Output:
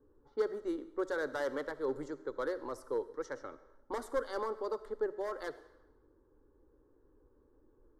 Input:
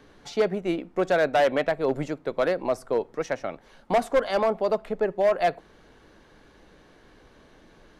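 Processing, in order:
tape wow and flutter 16 cents
low-pass that shuts in the quiet parts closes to 510 Hz, open at −23 dBFS
phaser with its sweep stopped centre 680 Hz, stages 6
on a send: convolution reverb RT60 0.90 s, pre-delay 20 ms, DRR 15 dB
on the sum: level −8.5 dB

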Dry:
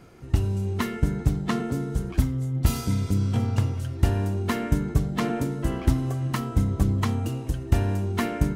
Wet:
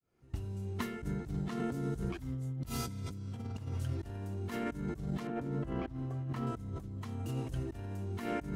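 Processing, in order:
fade in at the beginning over 1.97 s
0:05.27–0:06.47: low-pass filter 1,800 Hz 6 dB per octave
compressor whose output falls as the input rises −31 dBFS, ratio −1
level −7.5 dB

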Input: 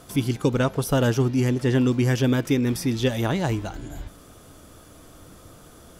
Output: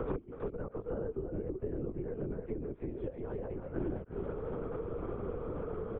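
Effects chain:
source passing by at 0:01.52, 5 m/s, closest 3.6 metres
treble cut that deepens with the level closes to 1,500 Hz, closed at −20.5 dBFS
spectral tilt −3 dB per octave
in parallel at −2.5 dB: downward compressor, threshold −25 dBFS, peak gain reduction 14.5 dB
on the sum: gate with flip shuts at −19 dBFS, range −32 dB
hard clipping −27 dBFS, distortion −13 dB
loudspeaker in its box 310–2,100 Hz, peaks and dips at 320 Hz +4 dB, 470 Hz +10 dB, 770 Hz −9 dB, 1,800 Hz −8 dB
far-end echo of a speakerphone 320 ms, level −7 dB
linear-prediction vocoder at 8 kHz whisper
multiband upward and downward compressor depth 100%
level +11.5 dB

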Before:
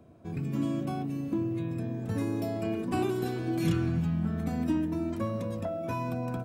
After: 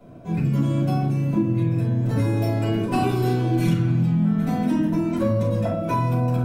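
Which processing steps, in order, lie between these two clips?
rectangular room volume 270 cubic metres, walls furnished, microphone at 6.6 metres
downward compressor, threshold −15 dBFS, peak gain reduction 8.5 dB
low-shelf EQ 160 Hz −3.5 dB

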